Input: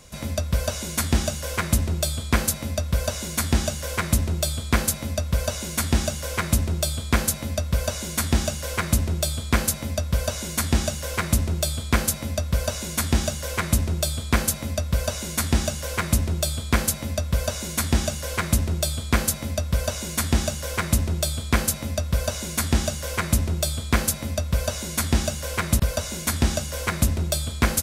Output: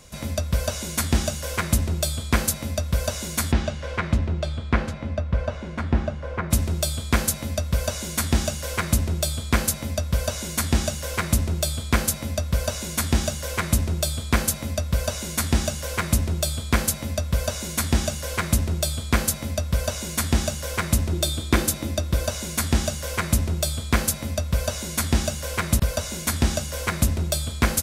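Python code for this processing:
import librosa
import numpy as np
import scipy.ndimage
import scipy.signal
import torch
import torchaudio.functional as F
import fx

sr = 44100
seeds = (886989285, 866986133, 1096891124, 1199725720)

y = fx.lowpass(x, sr, hz=fx.line((3.51, 3400.0), (6.5, 1400.0)), slope=12, at=(3.51, 6.5), fade=0.02)
y = fx.small_body(y, sr, hz=(330.0, 3600.0), ring_ms=45, db=11, at=(21.12, 22.26))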